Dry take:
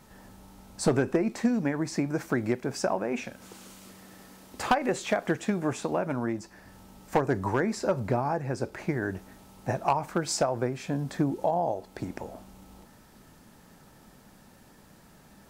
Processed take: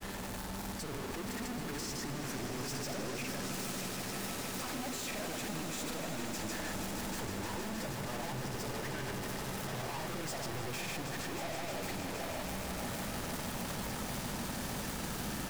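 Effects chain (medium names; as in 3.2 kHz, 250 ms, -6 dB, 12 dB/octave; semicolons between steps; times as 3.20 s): one-bit comparator; granulator; echo with a slow build-up 157 ms, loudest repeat 5, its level -11 dB; trim -9 dB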